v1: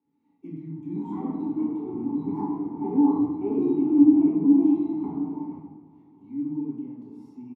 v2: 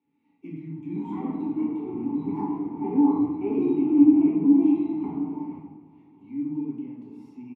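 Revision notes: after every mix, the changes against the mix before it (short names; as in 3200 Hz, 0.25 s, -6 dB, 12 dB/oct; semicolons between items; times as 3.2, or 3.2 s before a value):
master: add bell 2500 Hz +12 dB 0.76 oct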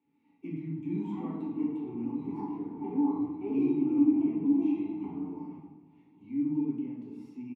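background -8.0 dB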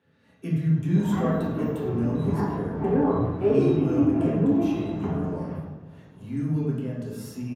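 speech -3.0 dB; master: remove vowel filter u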